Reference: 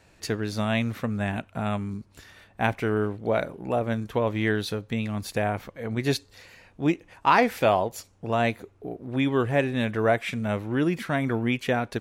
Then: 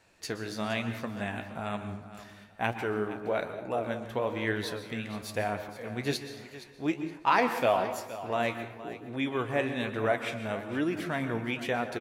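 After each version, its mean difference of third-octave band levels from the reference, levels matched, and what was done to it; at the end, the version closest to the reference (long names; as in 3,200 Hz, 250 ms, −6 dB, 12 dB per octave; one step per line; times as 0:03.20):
5.5 dB: low-shelf EQ 240 Hz −8 dB
repeating echo 468 ms, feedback 27%, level −14.5 dB
dense smooth reverb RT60 0.82 s, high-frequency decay 0.6×, pre-delay 110 ms, DRR 9.5 dB
flanger 1.1 Hz, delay 8.1 ms, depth 9.6 ms, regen +60%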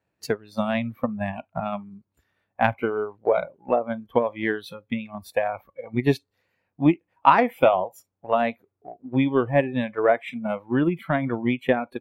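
10.0 dB: noise reduction from a noise print of the clip's start 19 dB
high-pass filter 92 Hz 12 dB per octave
transient designer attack +7 dB, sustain −1 dB
parametric band 7,000 Hz −11.5 dB 2.3 octaves
level +1 dB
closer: first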